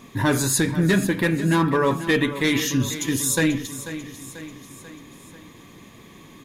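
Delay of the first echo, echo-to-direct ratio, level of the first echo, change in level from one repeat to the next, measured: 0.49 s, -11.5 dB, -13.0 dB, -5.0 dB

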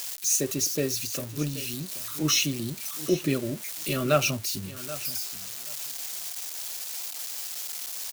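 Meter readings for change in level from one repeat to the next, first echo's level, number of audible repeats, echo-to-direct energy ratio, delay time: -16.0 dB, -16.0 dB, 2, -16.0 dB, 0.779 s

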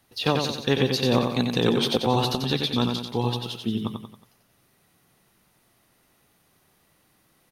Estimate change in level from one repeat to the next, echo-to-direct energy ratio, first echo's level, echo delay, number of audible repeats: -6.5 dB, -4.0 dB, -5.0 dB, 91 ms, 4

